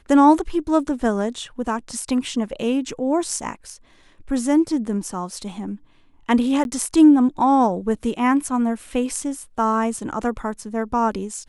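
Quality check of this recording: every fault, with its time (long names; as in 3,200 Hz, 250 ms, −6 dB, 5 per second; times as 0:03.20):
0:06.64–0:06.65: drop-out 11 ms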